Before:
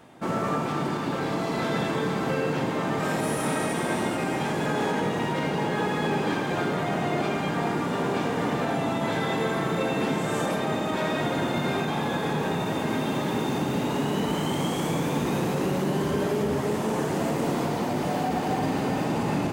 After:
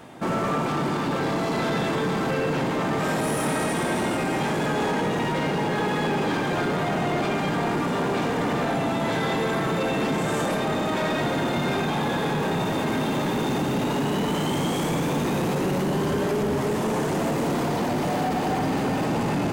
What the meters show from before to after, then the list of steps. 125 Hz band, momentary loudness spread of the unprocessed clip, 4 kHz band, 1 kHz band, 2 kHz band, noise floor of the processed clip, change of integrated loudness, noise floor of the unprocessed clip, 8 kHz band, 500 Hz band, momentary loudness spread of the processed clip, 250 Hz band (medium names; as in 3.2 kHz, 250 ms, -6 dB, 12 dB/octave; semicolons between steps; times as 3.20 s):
+2.0 dB, 1 LU, +2.5 dB, +2.0 dB, +2.5 dB, -26 dBFS, +2.0 dB, -29 dBFS, +2.5 dB, +2.0 dB, 1 LU, +2.0 dB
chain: in parallel at -2.5 dB: peak limiter -25 dBFS, peak gain reduction 9.5 dB; on the sum: saturation -21 dBFS, distortion -15 dB; trim +2 dB